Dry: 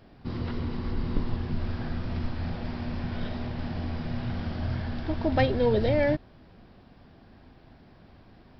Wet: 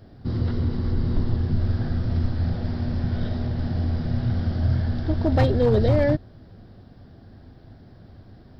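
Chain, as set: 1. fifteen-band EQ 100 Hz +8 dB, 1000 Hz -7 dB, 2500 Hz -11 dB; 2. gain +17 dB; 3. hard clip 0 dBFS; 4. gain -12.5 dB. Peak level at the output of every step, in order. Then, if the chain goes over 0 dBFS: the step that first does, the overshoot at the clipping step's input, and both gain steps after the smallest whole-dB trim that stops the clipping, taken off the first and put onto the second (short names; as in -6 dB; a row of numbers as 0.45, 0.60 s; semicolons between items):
-10.0, +7.0, 0.0, -12.5 dBFS; step 2, 7.0 dB; step 2 +10 dB, step 4 -5.5 dB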